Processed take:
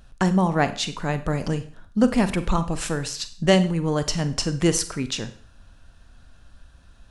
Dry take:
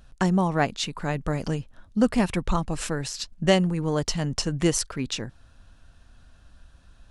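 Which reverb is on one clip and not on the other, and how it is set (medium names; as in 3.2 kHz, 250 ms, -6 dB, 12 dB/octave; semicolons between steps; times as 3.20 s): Schroeder reverb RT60 0.47 s, combs from 32 ms, DRR 11 dB; trim +2 dB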